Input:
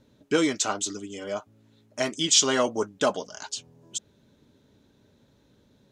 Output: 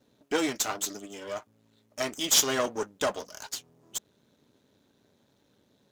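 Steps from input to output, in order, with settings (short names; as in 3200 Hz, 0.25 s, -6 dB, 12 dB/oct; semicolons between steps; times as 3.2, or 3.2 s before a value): half-wave gain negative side -12 dB; HPF 180 Hz 6 dB/oct; high shelf 9800 Hz +5.5 dB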